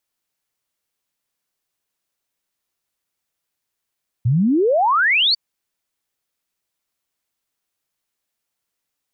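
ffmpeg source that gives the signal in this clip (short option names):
-f lavfi -i "aevalsrc='0.224*clip(min(t,1.1-t)/0.01,0,1)*sin(2*PI*110*1.1/log(4700/110)*(exp(log(4700/110)*t/1.1)-1))':d=1.1:s=44100"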